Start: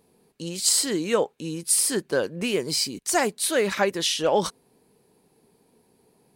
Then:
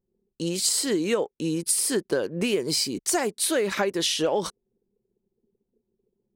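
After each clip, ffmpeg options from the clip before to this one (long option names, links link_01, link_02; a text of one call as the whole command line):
ffmpeg -i in.wav -af "anlmdn=0.0158,equalizer=frequency=370:width=1.6:gain=4.5,acompressor=threshold=-24dB:ratio=6,volume=3dB" out.wav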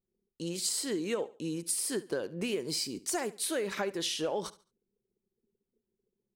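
ffmpeg -i in.wav -af "aecho=1:1:71|142|213:0.119|0.0357|0.0107,volume=-8.5dB" out.wav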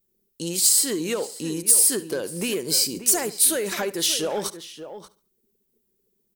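ffmpeg -i in.wav -filter_complex "[0:a]aeval=exprs='0.126*sin(PI/2*1.41*val(0)/0.126)':channel_layout=same,aemphasis=mode=production:type=50fm,asplit=2[link_01][link_02];[link_02]adelay=583.1,volume=-11dB,highshelf=frequency=4000:gain=-13.1[link_03];[link_01][link_03]amix=inputs=2:normalize=0" out.wav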